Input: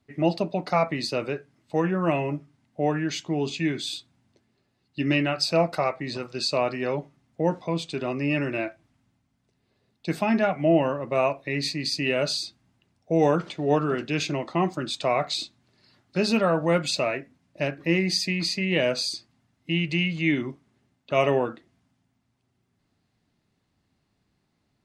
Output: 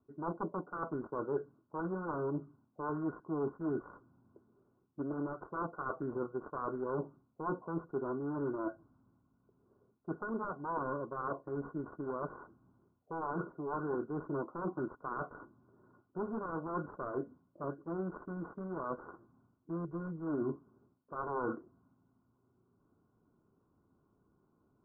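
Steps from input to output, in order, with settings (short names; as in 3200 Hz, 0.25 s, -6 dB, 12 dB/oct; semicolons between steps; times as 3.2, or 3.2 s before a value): self-modulated delay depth 0.96 ms; reverse; compressor 10:1, threshold -35 dBFS, peak gain reduction 19.5 dB; reverse; rippled Chebyshev low-pass 1500 Hz, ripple 9 dB; gain +6 dB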